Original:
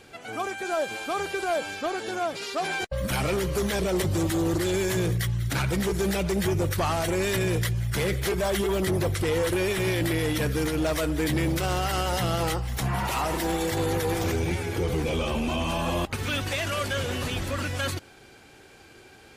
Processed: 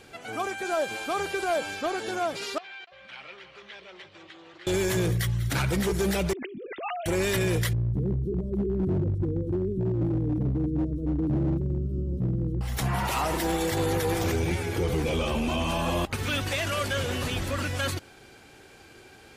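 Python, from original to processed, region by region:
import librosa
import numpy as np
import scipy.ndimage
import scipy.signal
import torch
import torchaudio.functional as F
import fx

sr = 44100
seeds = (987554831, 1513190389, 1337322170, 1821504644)

y = fx.chain(x, sr, fx.lowpass(hz=3100.0, slope=24),
    fx.differentiator(),
    fx.echo_single(ms=291, db=-11.0), at=(2.58, 4.67))
y = fx.chain(y, sr, fx.sine_speech(),
    fx.peak_eq(hz=1200.0, db=-13.5, octaves=2.1),
    fx.over_compress(threshold_db=-36.0, ratio=-1.0), at=(6.33, 7.06))
y = fx.chain(y, sr, fx.cheby2_lowpass(hz=720.0, order=4, stop_db=40),
    fx.peak_eq(hz=180.0, db=3.5, octaves=2.1),
    fx.overload_stage(gain_db=21.5), at=(7.73, 12.61))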